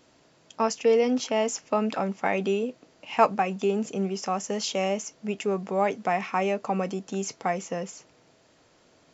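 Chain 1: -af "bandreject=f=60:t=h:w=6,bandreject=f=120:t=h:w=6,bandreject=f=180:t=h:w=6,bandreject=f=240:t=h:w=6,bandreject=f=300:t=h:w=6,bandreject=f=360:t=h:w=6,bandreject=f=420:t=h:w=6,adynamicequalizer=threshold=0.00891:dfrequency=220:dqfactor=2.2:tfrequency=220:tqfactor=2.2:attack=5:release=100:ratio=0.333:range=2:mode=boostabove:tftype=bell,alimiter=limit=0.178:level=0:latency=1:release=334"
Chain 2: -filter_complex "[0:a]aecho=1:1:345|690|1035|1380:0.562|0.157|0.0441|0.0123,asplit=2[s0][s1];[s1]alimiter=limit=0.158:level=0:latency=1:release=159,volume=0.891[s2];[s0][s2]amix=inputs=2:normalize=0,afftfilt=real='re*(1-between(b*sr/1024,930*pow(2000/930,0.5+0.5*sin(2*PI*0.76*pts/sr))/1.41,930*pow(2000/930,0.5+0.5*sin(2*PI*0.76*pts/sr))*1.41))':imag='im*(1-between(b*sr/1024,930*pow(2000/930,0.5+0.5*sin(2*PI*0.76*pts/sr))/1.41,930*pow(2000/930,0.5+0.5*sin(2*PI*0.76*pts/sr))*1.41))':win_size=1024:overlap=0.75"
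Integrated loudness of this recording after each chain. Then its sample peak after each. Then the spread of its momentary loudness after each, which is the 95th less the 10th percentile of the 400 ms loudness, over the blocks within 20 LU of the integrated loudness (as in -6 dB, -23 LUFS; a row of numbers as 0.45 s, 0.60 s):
-28.0 LUFS, -22.5 LUFS; -15.0 dBFS, -6.5 dBFS; 7 LU, 8 LU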